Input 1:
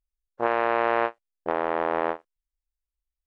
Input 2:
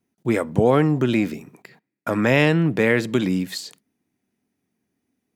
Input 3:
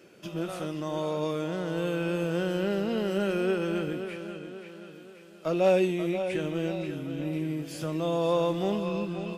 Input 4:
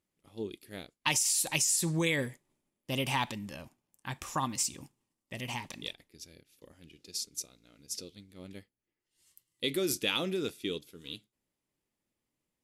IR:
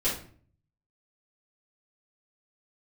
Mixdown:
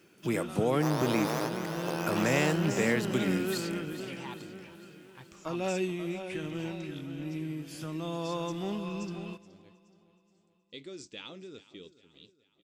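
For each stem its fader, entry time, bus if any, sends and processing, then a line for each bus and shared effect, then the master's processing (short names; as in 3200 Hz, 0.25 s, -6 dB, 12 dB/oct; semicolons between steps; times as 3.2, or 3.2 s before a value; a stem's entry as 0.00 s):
-11.0 dB, 0.40 s, no send, echo send -6.5 dB, sample sorter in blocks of 8 samples; shaped vibrato saw up 6 Hz, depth 250 cents
-10.5 dB, 0.00 s, no send, echo send -13 dB, high shelf 5900 Hz +10 dB; three-band squash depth 40%
-4.0 dB, 0.00 s, no send, echo send -21.5 dB, bell 550 Hz -9 dB 0.68 oct
-13.0 dB, 1.10 s, no send, echo send -17.5 dB, Chebyshev low-pass 7800 Hz, order 5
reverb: off
echo: feedback echo 0.423 s, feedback 48%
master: dry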